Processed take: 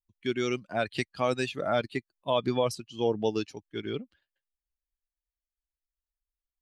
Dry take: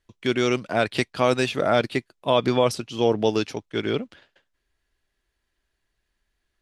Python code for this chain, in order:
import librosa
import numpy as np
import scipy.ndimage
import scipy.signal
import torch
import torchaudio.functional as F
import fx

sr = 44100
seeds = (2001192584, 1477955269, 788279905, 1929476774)

y = fx.bin_expand(x, sr, power=1.5)
y = F.gain(torch.from_numpy(y), -5.0).numpy()